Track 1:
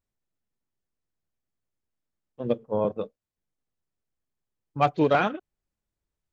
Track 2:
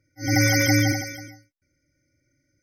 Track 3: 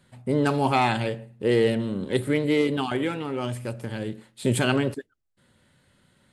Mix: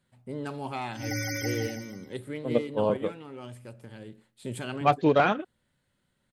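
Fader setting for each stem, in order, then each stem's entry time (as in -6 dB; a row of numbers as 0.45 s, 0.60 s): 0.0 dB, -12.5 dB, -13.0 dB; 0.05 s, 0.75 s, 0.00 s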